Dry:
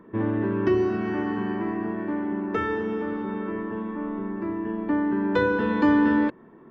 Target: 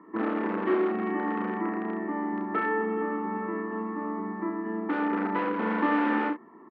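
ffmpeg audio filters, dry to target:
-filter_complex "[0:a]aecho=1:1:1:0.83,asplit=2[a][b];[b]aeval=exprs='(mod(7.5*val(0)+1,2)-1)/7.5':c=same,volume=-5.5dB[c];[a][c]amix=inputs=2:normalize=0,highpass=f=230:w=0.5412,highpass=f=230:w=1.3066,equalizer=f=330:t=q:w=4:g=4,equalizer=f=480:t=q:w=4:g=9,equalizer=f=1.3k:t=q:w=4:g=7,lowpass=f=2.4k:w=0.5412,lowpass=f=2.4k:w=1.3066,aecho=1:1:32|66:0.631|0.316,volume=-8dB"

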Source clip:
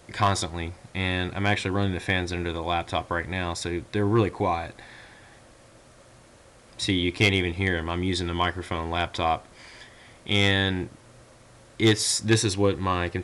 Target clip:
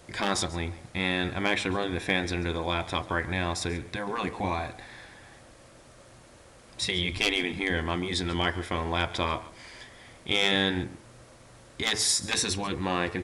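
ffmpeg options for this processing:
-filter_complex "[0:a]asplit=3[a][b][c];[a]afade=t=out:st=7.11:d=0.02[d];[b]asubboost=boost=7:cutoff=140,afade=t=in:st=7.11:d=0.02,afade=t=out:st=7.69:d=0.02[e];[c]afade=t=in:st=7.69:d=0.02[f];[d][e][f]amix=inputs=3:normalize=0,afftfilt=real='re*lt(hypot(re,im),0.316)':imag='im*lt(hypot(re,im),0.316)':win_size=1024:overlap=0.75,bandreject=f=108.2:t=h:w=4,bandreject=f=216.4:t=h:w=4,bandreject=f=324.6:t=h:w=4,bandreject=f=432.8:t=h:w=4,bandreject=f=541:t=h:w=4,bandreject=f=649.2:t=h:w=4,bandreject=f=757.4:t=h:w=4,bandreject=f=865.6:t=h:w=4,bandreject=f=973.8:t=h:w=4,bandreject=f=1.082k:t=h:w=4,bandreject=f=1.1902k:t=h:w=4,bandreject=f=1.2984k:t=h:w=4,bandreject=f=1.4066k:t=h:w=4,bandreject=f=1.5148k:t=h:w=4,bandreject=f=1.623k:t=h:w=4,bandreject=f=1.7312k:t=h:w=4,bandreject=f=1.8394k:t=h:w=4,bandreject=f=1.9476k:t=h:w=4,bandreject=f=2.0558k:t=h:w=4,bandreject=f=2.164k:t=h:w=4,bandreject=f=2.2722k:t=h:w=4,asplit=2[g][h];[h]aecho=0:1:139:0.119[i];[g][i]amix=inputs=2:normalize=0"

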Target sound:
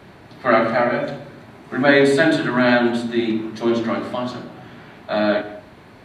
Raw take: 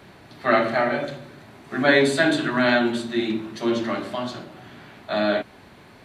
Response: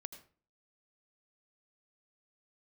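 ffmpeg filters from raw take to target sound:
-filter_complex "[0:a]asplit=2[a][b];[b]lowpass=f=1.9k:p=1[c];[1:a]atrim=start_sample=2205,asetrate=33957,aresample=44100[d];[c][d]afir=irnorm=-1:irlink=0,volume=5dB[e];[a][e]amix=inputs=2:normalize=0,volume=-3dB"

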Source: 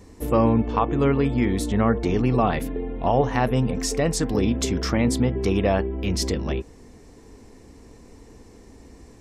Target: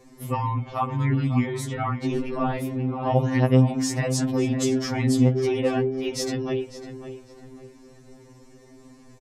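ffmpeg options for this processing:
-filter_complex "[0:a]asplit=2[a][b];[b]adelay=551,lowpass=f=3.4k:p=1,volume=-11dB,asplit=2[c][d];[d]adelay=551,lowpass=f=3.4k:p=1,volume=0.35,asplit=2[e][f];[f]adelay=551,lowpass=f=3.4k:p=1,volume=0.35,asplit=2[g][h];[h]adelay=551,lowpass=f=3.4k:p=1,volume=0.35[i];[a][c][e][g][i]amix=inputs=5:normalize=0,asettb=1/sr,asplit=3[j][k][l];[j]atrim=end=2.134[m];[k]atrim=start=2.13:end=2.58,asetpts=PTS-STARTPTS,afade=t=in:d=0.004:c=qsin,afade=t=out:st=0.446:d=0.004:c=qsin,aeval=exprs='val(0)*sin(2*PI*36*n/s)':c=same[n];[l]atrim=start=2.576[o];[m][n]acrossfade=d=0.004:c1=hsin:c2=qsin[p];[p][o]acrossfade=d=0.004:c1=qsin:c2=hsin,afftfilt=real='re*2.45*eq(mod(b,6),0)':imag='im*2.45*eq(mod(b,6),0)':win_size=2048:overlap=0.75"

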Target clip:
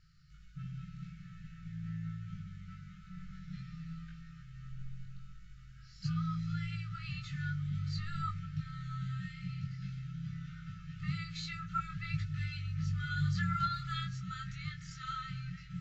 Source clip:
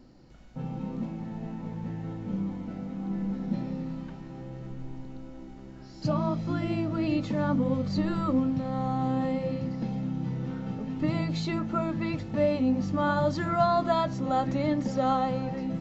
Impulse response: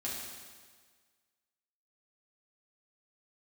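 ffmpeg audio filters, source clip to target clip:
-filter_complex "[0:a]asettb=1/sr,asplit=3[a][b][c];[a]atrim=end=11.624[d];[b]atrim=start=11.62:end=14.04,asetpts=PTS-STARTPTS,afade=t=in:d=0.004:c=qsin,afade=t=out:st=2.416:d=0.004:c=qsin,aphaser=in_gain=1:out_gain=1:delay=1.5:decay=0.41:speed=1.7:type=sinusoidal[e];[c]atrim=start=14.036[f];[d][e]acrossfade=d=0.004:c1=hsin:c2=qsin[g];[g][f]acrossfade=d=0.004:c1=qsin:c2=hsin,afftfilt=real='re*(1-between(b*sr/4096,190,1200))':imag='im*(1-between(b*sr/4096,190,1200))':win_size=4096:overlap=0.75,flanger=delay=19.5:depth=2.5:speed=0.47,volume=-1.5dB"

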